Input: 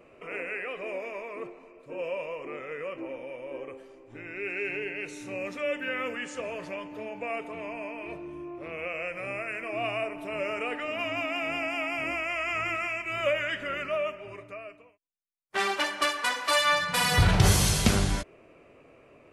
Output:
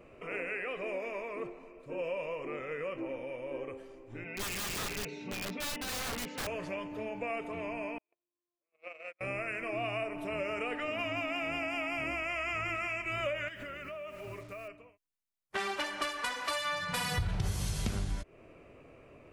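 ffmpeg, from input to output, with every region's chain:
-filter_complex "[0:a]asettb=1/sr,asplit=3[a][b][c];[a]atrim=end=4.244[d];[b]atrim=start=4.24:end=6.47,asetpts=PTS-STARTPTS,afade=t=in:d=0.004:c=qsin,afade=t=out:st=2.226:d=0.004:c=qsin,highpass=110,equalizer=f=130:t=q:w=4:g=7,equalizer=f=340:t=q:w=4:g=-6,equalizer=f=1.2k:t=q:w=4:g=-8,equalizer=f=1.7k:t=q:w=4:g=-9,equalizer=f=3k:t=q:w=4:g=-4,lowpass=f=4.2k:w=0.5412,lowpass=f=4.2k:w=1.3066,aecho=1:1:4.5:0.87,atrim=end_sample=98343,aeval=exprs='(mod(33.5*val(0)+1,2)-1)/33.5':c=same[e];[c]atrim=start=6.466[f];[d][e]acrossfade=d=0.004:c1=hsin:c2=qsin[g];[g][f]acrossfade=d=0.004:c1=qsin:c2=hsin,asettb=1/sr,asplit=3[h][i][j];[h]atrim=end=7.984[k];[i]atrim=start=7.98:end=9.21,asetpts=PTS-STARTPTS,afade=t=in:d=0.004:c=qsin,afade=t=out:st=1.226:d=0.004:c=qsin,agate=range=-52dB:threshold=-33dB:ratio=16:release=100:detection=peak,highpass=410[l];[j]atrim=start=9.206[m];[k][l]acrossfade=d=0.004:c1=hsin:c2=qsin[n];[n][m]acrossfade=d=0.004:c1=qsin:c2=hsin,asettb=1/sr,asplit=3[o][p][q];[o]atrim=end=13.484[r];[p]atrim=start=13.48:end=14.68,asetpts=PTS-STARTPTS,afade=t=in:d=0.004:c=qsin,afade=t=out:st=1.196:d=0.004:c=qsin,acrusher=bits=8:mix=0:aa=0.5,acompressor=threshold=-38dB:ratio=10:attack=3.2:release=140:knee=1:detection=peak[s];[q]atrim=start=14.676[t];[r][s]acrossfade=d=0.004:c1=hsin:c2=qsin[u];[u][t]acrossfade=d=0.004:c1=qsin:c2=hsin,lowshelf=f=130:g=10,acompressor=threshold=-30dB:ratio=5,volume=-1.5dB"

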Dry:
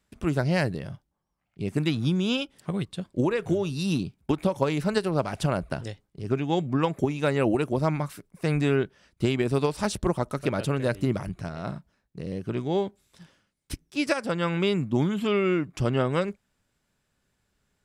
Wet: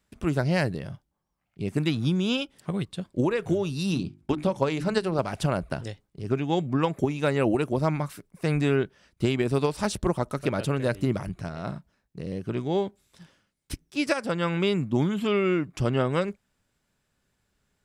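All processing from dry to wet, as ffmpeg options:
-filter_complex "[0:a]asettb=1/sr,asplit=3[a][b][c];[a]atrim=end=3.914[d];[b]atrim=start=3.91:end=5.19,asetpts=PTS-STARTPTS,afade=t=in:d=0.004:c=qsin,afade=t=out:st=1.276:d=0.004:c=qsin,lowpass=9.3k,bandreject=f=50:t=h:w=6,bandreject=f=100:t=h:w=6,bandreject=f=150:t=h:w=6,bandreject=f=200:t=h:w=6,bandreject=f=250:t=h:w=6,bandreject=f=300:t=h:w=6,bandreject=f=350:t=h:w=6[e];[c]atrim=start=5.186[f];[d][e]acrossfade=d=0.004:c1=hsin:c2=qsin[g];[g][f]acrossfade=d=0.004:c1=qsin:c2=hsin"

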